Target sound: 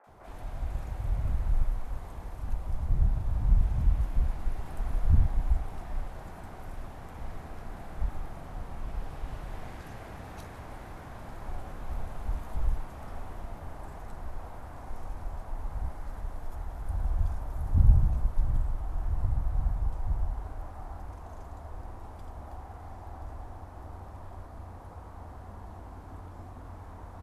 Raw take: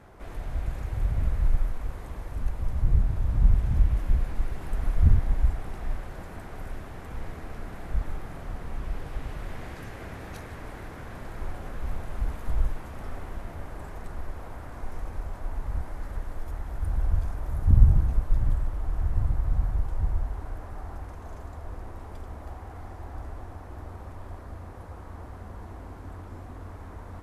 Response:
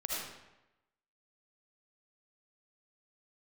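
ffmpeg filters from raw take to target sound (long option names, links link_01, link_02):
-filter_complex "[0:a]equalizer=frequency=790:width_type=o:width=0.91:gain=4.5,acrossover=split=430|1900[link_01][link_02][link_03];[link_03]adelay=40[link_04];[link_01]adelay=70[link_05];[link_05][link_02][link_04]amix=inputs=3:normalize=0,volume=-3.5dB"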